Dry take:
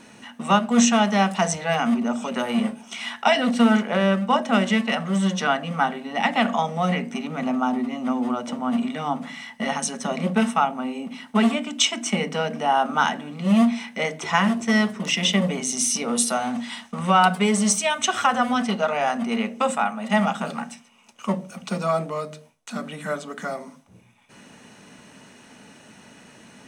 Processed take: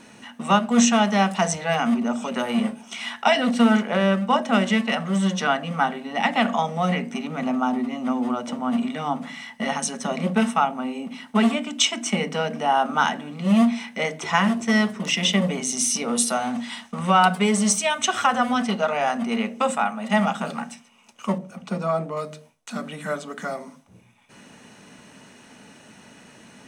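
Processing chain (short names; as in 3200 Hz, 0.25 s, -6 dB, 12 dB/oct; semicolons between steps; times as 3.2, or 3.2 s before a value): 21.38–22.17 high shelf 2300 Hz -9.5 dB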